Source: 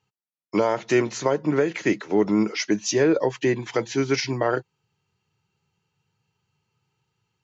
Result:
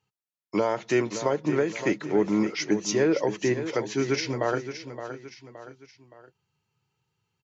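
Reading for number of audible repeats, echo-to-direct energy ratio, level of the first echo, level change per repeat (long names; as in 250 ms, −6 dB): 3, −9.5 dB, −10.5 dB, −7.5 dB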